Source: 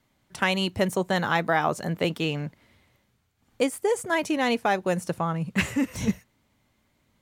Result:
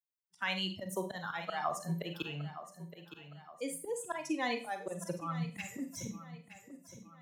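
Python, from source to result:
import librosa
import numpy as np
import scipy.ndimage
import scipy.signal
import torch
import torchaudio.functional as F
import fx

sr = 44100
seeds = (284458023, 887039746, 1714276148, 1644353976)

p1 = fx.bin_expand(x, sr, power=2.0)
p2 = scipy.signal.sosfilt(scipy.signal.butter(2, 210.0, 'highpass', fs=sr, output='sos'), p1)
p3 = fx.peak_eq(p2, sr, hz=380.0, db=-5.5, octaves=0.28)
p4 = fx.rider(p3, sr, range_db=10, speed_s=0.5)
p5 = fx.auto_swell(p4, sr, attack_ms=175.0)
p6 = p5 + fx.echo_feedback(p5, sr, ms=915, feedback_pct=27, wet_db=-17, dry=0)
p7 = fx.rev_schroeder(p6, sr, rt60_s=0.31, comb_ms=32, drr_db=6.0)
p8 = fx.band_squash(p7, sr, depth_pct=40)
y = p8 * librosa.db_to_amplitude(-1.5)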